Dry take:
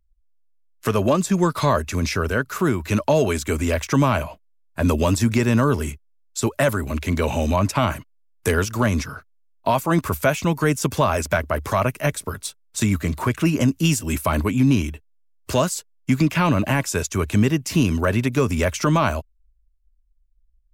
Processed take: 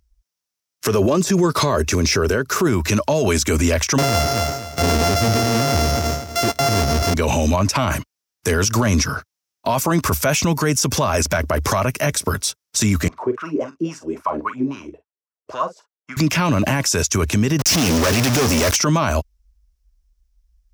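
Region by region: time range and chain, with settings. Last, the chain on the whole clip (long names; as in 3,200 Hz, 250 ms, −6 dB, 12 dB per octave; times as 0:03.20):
0:00.87–0:02.67: de-essing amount 60% + parametric band 390 Hz +7.5 dB 0.61 octaves
0:03.98–0:07.14: samples sorted by size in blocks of 64 samples + leveller curve on the samples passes 3 + repeating echo 248 ms, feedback 25%, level −15.5 dB
0:13.08–0:16.17: LFO wah 3.7 Hz 360–1,400 Hz, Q 5.9 + notch filter 860 Hz, Q 19 + double-tracking delay 43 ms −11 dB
0:17.59–0:18.76: low-shelf EQ 84 Hz −9 dB + downward compressor, threshold −23 dBFS + log-companded quantiser 2 bits
whole clip: high-pass filter 43 Hz; parametric band 5,600 Hz +9.5 dB 0.47 octaves; boost into a limiter +18 dB; level −8 dB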